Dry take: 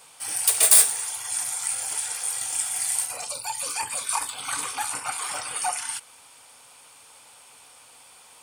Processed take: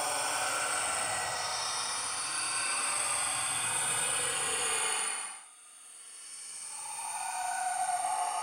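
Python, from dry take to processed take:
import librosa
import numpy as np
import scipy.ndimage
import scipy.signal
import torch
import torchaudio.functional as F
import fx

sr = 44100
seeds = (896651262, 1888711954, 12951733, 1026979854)

y = fx.auto_swell(x, sr, attack_ms=535.0)
y = fx.paulstretch(y, sr, seeds[0], factor=24.0, window_s=0.05, from_s=5.35)
y = F.gain(torch.from_numpy(y), 4.0).numpy()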